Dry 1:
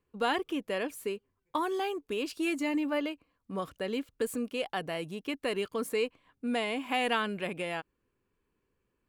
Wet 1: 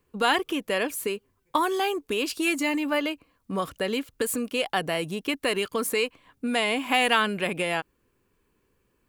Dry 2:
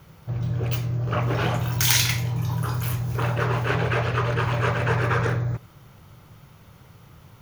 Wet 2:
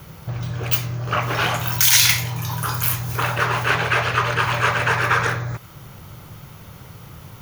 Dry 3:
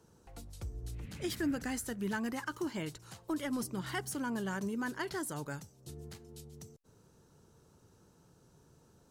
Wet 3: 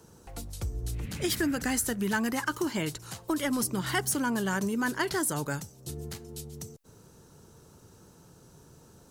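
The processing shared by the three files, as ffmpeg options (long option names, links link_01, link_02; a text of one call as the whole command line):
ffmpeg -i in.wav -filter_complex "[0:a]highshelf=frequency=7000:gain=5.5,acrossover=split=810|2600[link_01][link_02][link_03];[link_01]acompressor=threshold=-35dB:ratio=4[link_04];[link_04][link_02][link_03]amix=inputs=3:normalize=0,alimiter=level_in=9.5dB:limit=-1dB:release=50:level=0:latency=1,volume=-1dB" out.wav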